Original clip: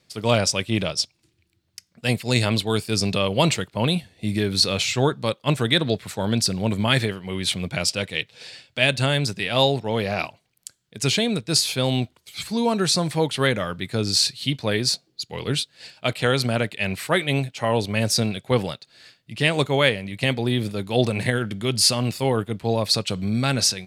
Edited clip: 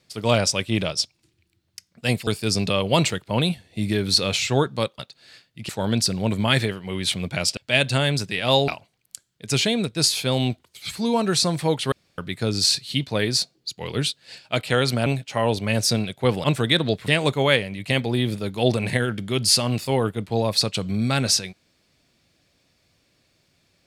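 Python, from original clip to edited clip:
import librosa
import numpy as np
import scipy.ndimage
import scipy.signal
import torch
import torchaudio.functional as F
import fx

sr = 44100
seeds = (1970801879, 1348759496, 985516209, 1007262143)

y = fx.edit(x, sr, fx.cut(start_s=2.27, length_s=0.46),
    fx.swap(start_s=5.45, length_s=0.64, other_s=18.71, other_length_s=0.7),
    fx.cut(start_s=7.97, length_s=0.68),
    fx.cut(start_s=9.76, length_s=0.44),
    fx.room_tone_fill(start_s=13.44, length_s=0.26),
    fx.cut(start_s=16.58, length_s=0.75), tone=tone)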